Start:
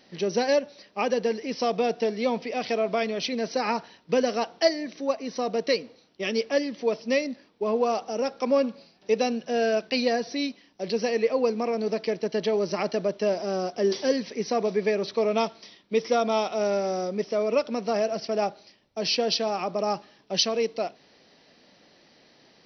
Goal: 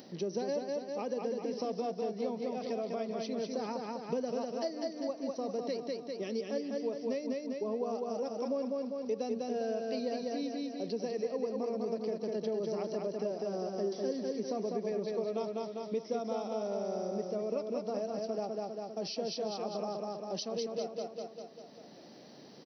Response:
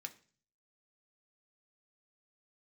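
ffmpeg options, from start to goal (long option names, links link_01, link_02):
-filter_complex "[0:a]asplit=2[link_01][link_02];[link_02]aecho=0:1:199|398|597|796|995|1194:0.668|0.314|0.148|0.0694|0.0326|0.0153[link_03];[link_01][link_03]amix=inputs=2:normalize=0,acompressor=mode=upward:threshold=-40dB:ratio=2.5,highpass=140,acompressor=threshold=-33dB:ratio=2.5,equalizer=frequency=2300:width_type=o:width=2.4:gain=-14"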